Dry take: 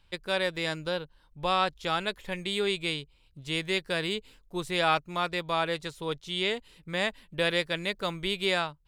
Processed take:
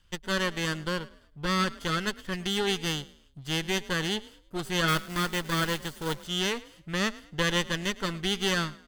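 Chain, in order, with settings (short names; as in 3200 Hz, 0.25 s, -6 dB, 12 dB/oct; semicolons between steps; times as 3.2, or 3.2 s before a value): minimum comb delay 0.63 ms; frequency-shifting echo 0.107 s, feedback 33%, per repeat +39 Hz, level -20 dB; 4.88–6.27 companded quantiser 4-bit; gain +1.5 dB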